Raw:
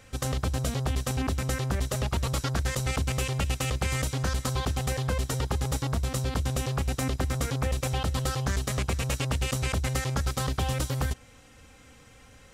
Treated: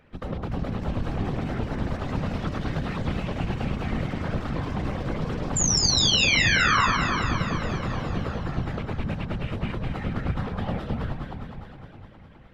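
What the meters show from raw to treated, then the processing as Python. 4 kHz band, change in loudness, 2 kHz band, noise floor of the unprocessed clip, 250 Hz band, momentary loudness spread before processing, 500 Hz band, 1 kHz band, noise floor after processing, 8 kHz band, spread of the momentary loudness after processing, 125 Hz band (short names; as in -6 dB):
+9.0 dB, +3.5 dB, +8.5 dB, -53 dBFS, +5.0 dB, 1 LU, +0.5 dB, +5.0 dB, -47 dBFS, +5.0 dB, 13 LU, -0.5 dB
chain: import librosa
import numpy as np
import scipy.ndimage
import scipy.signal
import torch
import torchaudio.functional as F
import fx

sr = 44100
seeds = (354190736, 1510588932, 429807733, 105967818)

p1 = fx.air_absorb(x, sr, metres=400.0)
p2 = fx.echo_pitch(p1, sr, ms=361, semitones=6, count=2, db_per_echo=-6.0)
p3 = fx.spec_paint(p2, sr, seeds[0], shape='fall', start_s=5.56, length_s=1.31, low_hz=1000.0, high_hz=7400.0, level_db=-21.0)
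p4 = p3 + fx.echo_alternate(p3, sr, ms=103, hz=1200.0, feedback_pct=83, wet_db=-2.5, dry=0)
p5 = fx.whisperise(p4, sr, seeds[1])
y = F.gain(torch.from_numpy(p5), -2.5).numpy()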